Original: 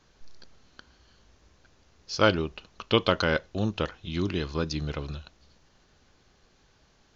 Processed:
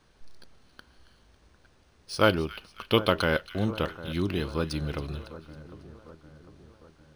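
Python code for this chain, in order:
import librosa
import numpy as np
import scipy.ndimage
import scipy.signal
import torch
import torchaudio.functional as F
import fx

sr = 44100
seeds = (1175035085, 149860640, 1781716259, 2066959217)

p1 = x + fx.echo_split(x, sr, split_hz=1500.0, low_ms=752, high_ms=275, feedback_pct=52, wet_db=-15.5, dry=0)
y = np.interp(np.arange(len(p1)), np.arange(len(p1))[::3], p1[::3])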